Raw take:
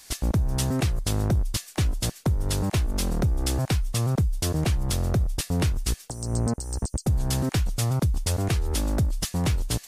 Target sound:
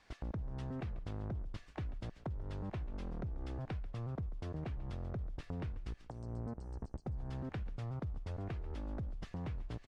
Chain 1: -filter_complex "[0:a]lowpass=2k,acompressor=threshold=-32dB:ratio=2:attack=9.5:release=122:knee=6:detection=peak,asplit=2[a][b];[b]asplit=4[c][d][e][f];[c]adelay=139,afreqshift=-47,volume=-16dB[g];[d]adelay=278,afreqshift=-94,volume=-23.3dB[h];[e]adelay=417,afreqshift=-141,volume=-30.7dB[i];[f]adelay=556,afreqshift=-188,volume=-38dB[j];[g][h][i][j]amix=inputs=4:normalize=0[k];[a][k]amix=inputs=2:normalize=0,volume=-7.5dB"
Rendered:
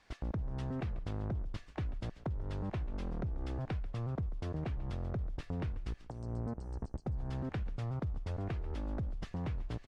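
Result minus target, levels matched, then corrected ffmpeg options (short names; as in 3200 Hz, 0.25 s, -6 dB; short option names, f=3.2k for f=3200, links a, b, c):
compressor: peak gain reduction -3.5 dB
-filter_complex "[0:a]lowpass=2k,acompressor=threshold=-39.5dB:ratio=2:attack=9.5:release=122:knee=6:detection=peak,asplit=2[a][b];[b]asplit=4[c][d][e][f];[c]adelay=139,afreqshift=-47,volume=-16dB[g];[d]adelay=278,afreqshift=-94,volume=-23.3dB[h];[e]adelay=417,afreqshift=-141,volume=-30.7dB[i];[f]adelay=556,afreqshift=-188,volume=-38dB[j];[g][h][i][j]amix=inputs=4:normalize=0[k];[a][k]amix=inputs=2:normalize=0,volume=-7.5dB"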